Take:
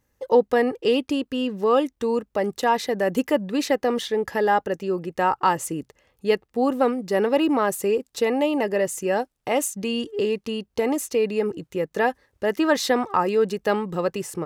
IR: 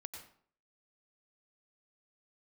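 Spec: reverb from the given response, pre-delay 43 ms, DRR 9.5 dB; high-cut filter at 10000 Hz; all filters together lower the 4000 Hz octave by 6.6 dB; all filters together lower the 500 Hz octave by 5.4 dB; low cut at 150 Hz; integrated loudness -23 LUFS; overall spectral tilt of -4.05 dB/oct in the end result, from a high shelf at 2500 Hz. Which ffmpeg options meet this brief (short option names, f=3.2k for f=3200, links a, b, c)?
-filter_complex "[0:a]highpass=150,lowpass=10k,equalizer=f=500:t=o:g=-6,highshelf=f=2.5k:g=-5.5,equalizer=f=4k:t=o:g=-4.5,asplit=2[a][b];[1:a]atrim=start_sample=2205,adelay=43[c];[b][c]afir=irnorm=-1:irlink=0,volume=-6dB[d];[a][d]amix=inputs=2:normalize=0,volume=4dB"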